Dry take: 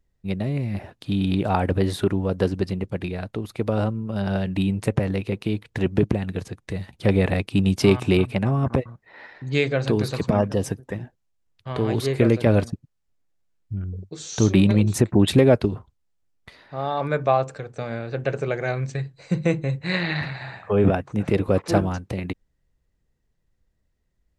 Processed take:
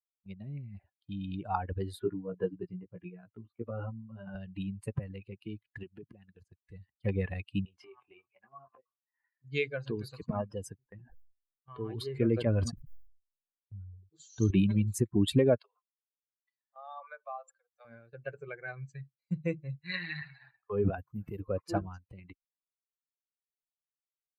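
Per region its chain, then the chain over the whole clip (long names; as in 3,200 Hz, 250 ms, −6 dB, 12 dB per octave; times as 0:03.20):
0:01.99–0:04.35: high-pass filter 100 Hz + high-frequency loss of the air 330 metres + double-tracking delay 17 ms −2 dB
0:05.83–0:06.40: downward compressor 2 to 1, threshold −27 dBFS + low-shelf EQ 65 Hz −11 dB
0:07.65–0:09.30: three-way crossover with the lows and the highs turned down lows −16 dB, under 370 Hz, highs −16 dB, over 2,800 Hz + downward compressor 12 to 1, threshold −29 dBFS + double-tracking delay 23 ms −5.5 dB
0:10.78–0:14.51: high-shelf EQ 6,600 Hz −10.5 dB + level that may fall only so fast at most 49 dB per second
0:15.58–0:17.85: Butterworth high-pass 480 Hz 72 dB per octave + downward compressor 3 to 1, threshold −26 dBFS
0:20.98–0:21.40: variable-slope delta modulation 64 kbit/s + low-shelf EQ 200 Hz +5.5 dB + downward compressor 3 to 1, threshold −18 dBFS
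whole clip: spectral dynamics exaggerated over time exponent 2; notch filter 5,500 Hz, Q 7.1; noise gate −52 dBFS, range −13 dB; level −6 dB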